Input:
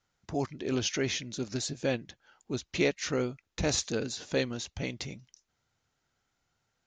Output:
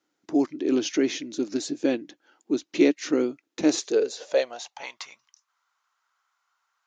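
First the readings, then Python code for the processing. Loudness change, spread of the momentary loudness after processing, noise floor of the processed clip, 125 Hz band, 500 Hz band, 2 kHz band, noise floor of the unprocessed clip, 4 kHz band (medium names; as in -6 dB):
+7.0 dB, 15 LU, -79 dBFS, -12.0 dB, +7.0 dB, +0.5 dB, -81 dBFS, 0.0 dB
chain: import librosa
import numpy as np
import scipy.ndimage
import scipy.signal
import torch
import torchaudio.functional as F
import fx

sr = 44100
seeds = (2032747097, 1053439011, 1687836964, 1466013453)

y = fx.filter_sweep_highpass(x, sr, from_hz=300.0, to_hz=1100.0, start_s=3.64, end_s=5.04, q=6.0)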